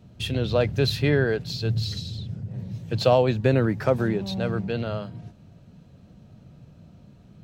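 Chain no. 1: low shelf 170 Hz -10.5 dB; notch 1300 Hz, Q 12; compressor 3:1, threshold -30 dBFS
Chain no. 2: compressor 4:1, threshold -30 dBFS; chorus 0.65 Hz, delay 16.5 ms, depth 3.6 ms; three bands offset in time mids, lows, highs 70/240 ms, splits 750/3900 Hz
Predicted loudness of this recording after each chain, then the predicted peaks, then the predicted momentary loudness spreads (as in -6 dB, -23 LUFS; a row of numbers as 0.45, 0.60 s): -33.5, -37.0 LUFS; -16.0, -22.0 dBFS; 9, 18 LU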